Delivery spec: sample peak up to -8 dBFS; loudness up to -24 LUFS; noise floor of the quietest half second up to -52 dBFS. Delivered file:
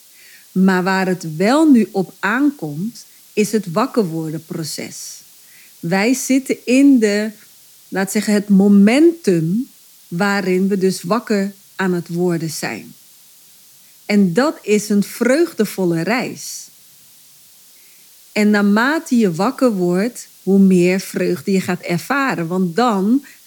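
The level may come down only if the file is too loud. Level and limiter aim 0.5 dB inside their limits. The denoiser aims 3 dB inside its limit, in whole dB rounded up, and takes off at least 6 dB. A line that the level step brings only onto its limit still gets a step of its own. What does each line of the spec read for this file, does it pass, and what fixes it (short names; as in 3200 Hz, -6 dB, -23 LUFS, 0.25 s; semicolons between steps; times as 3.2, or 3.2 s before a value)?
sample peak -1.5 dBFS: fail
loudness -16.5 LUFS: fail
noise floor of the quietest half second -46 dBFS: fail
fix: gain -8 dB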